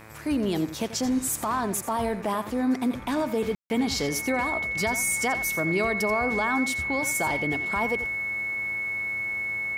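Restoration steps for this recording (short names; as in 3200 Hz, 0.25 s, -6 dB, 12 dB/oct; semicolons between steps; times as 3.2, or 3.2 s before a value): de-hum 109.5 Hz, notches 23; notch 2200 Hz, Q 30; room tone fill 3.55–3.7; inverse comb 86 ms -12.5 dB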